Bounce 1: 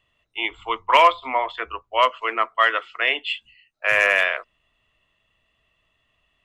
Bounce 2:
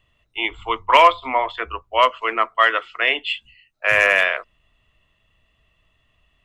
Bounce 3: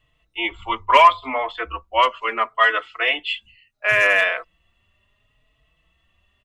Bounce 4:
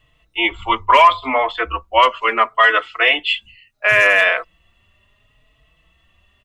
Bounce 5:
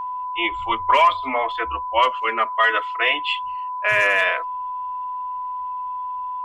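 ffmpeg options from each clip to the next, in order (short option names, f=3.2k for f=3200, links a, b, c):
-af "lowshelf=f=160:g=9.5,volume=2dB"
-filter_complex "[0:a]asplit=2[a][b];[b]adelay=4.2,afreqshift=0.72[c];[a][c]amix=inputs=2:normalize=1,volume=2dB"
-af "alimiter=level_in=7.5dB:limit=-1dB:release=50:level=0:latency=1,volume=-1dB"
-af "aeval=exprs='val(0)+0.1*sin(2*PI*1000*n/s)':c=same,volume=-5.5dB"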